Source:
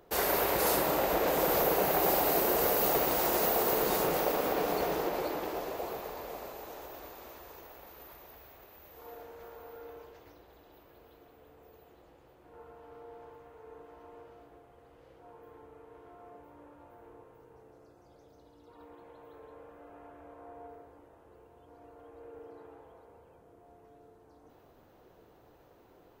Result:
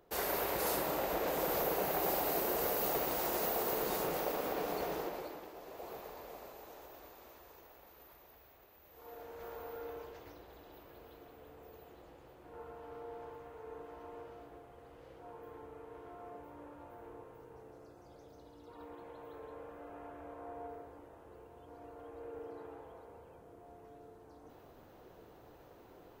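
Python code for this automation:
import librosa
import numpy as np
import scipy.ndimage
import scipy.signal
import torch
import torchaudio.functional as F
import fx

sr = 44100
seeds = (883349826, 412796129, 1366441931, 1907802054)

y = fx.gain(x, sr, db=fx.line((5.0, -6.5), (5.54, -15.0), (5.95, -7.5), (8.83, -7.5), (9.51, 2.5)))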